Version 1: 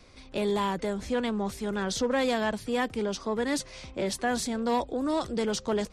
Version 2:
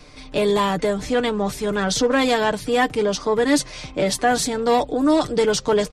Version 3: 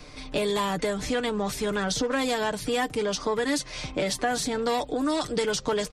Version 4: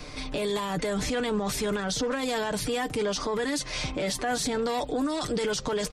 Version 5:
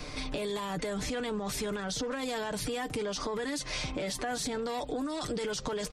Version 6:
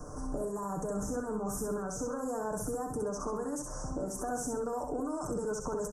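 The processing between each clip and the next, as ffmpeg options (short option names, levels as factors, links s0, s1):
-af "aecho=1:1:6.7:0.58,volume=2.66"
-filter_complex "[0:a]acrossover=split=1200|5700[s0][s1][s2];[s0]acompressor=threshold=0.0501:ratio=4[s3];[s1]acompressor=threshold=0.0251:ratio=4[s4];[s2]acompressor=threshold=0.0178:ratio=4[s5];[s3][s4][s5]amix=inputs=3:normalize=0"
-af "alimiter=level_in=1.19:limit=0.0631:level=0:latency=1:release=18,volume=0.841,volume=1.68"
-af "acompressor=threshold=0.0282:ratio=6"
-filter_complex "[0:a]asuperstop=centerf=3000:order=12:qfactor=0.66,asplit=2[s0][s1];[s1]aecho=0:1:65|130|195|260:0.596|0.197|0.0649|0.0214[s2];[s0][s2]amix=inputs=2:normalize=0,volume=0.794"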